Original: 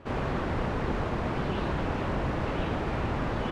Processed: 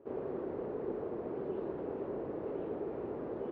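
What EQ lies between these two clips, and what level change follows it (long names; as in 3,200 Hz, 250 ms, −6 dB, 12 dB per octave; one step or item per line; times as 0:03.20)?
resonant band-pass 410 Hz, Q 3.3
0.0 dB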